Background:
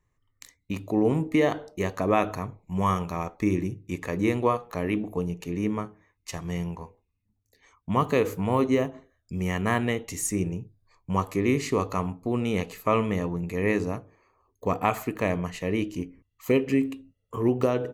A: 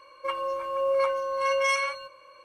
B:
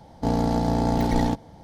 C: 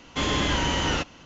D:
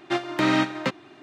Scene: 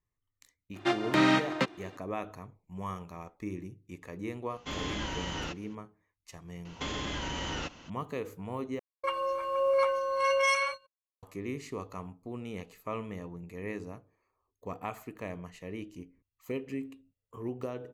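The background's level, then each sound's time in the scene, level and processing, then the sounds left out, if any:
background -13.5 dB
0.75 s: add D -2.5 dB
4.50 s: add C -11.5 dB
6.65 s: add C -3 dB + compression 10:1, threshold -28 dBFS
8.79 s: replace with A -1.5 dB + gate -39 dBFS, range -57 dB
not used: B

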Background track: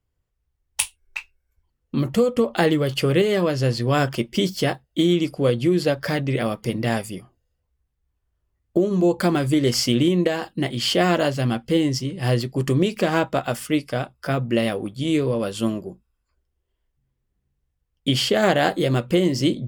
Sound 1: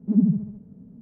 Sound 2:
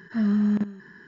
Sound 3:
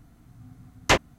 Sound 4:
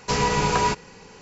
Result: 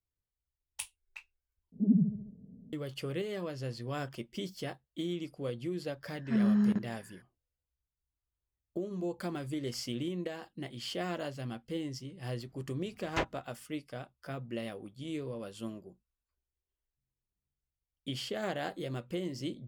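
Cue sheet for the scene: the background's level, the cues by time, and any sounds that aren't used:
background track -17.5 dB
1.72 s: replace with 1 -7 dB + steep low-pass 700 Hz
6.15 s: add 2 -4.5 dB + upward expansion, over -33 dBFS
12.27 s: add 3 -12.5 dB + low-pass 2.6 kHz 6 dB/octave
not used: 4

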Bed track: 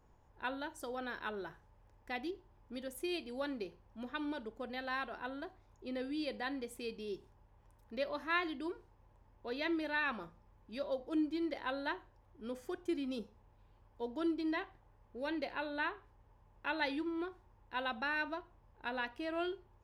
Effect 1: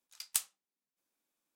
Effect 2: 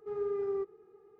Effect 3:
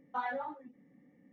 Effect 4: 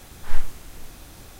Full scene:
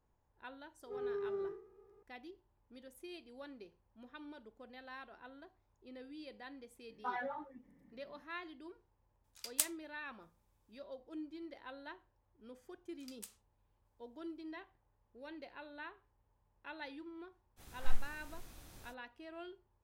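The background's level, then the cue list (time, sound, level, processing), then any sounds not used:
bed track -11.5 dB
0.84 s: add 2 -6.5 dB + spectral sustain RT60 0.53 s
6.90 s: add 3 -3 dB + peaking EQ 810 Hz -2 dB
9.24 s: add 1 -1 dB
12.88 s: add 1 -7.5 dB + compression 2.5:1, threshold -42 dBFS
17.56 s: add 4 -12 dB, fades 0.05 s

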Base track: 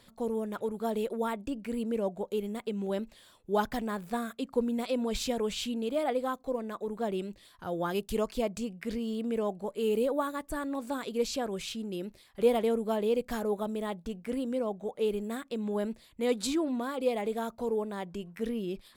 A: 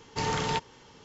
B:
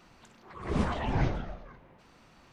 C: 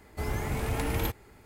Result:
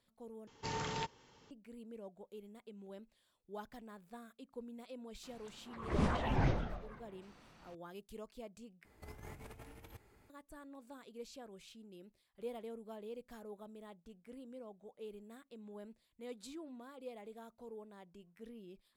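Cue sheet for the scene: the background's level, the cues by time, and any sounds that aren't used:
base track -19 dB
0.47 s: replace with A -10.5 dB
5.23 s: add B -3.5 dB + hard clipper -19.5 dBFS
8.85 s: replace with C -17 dB + compressor with a negative ratio -34 dBFS, ratio -0.5

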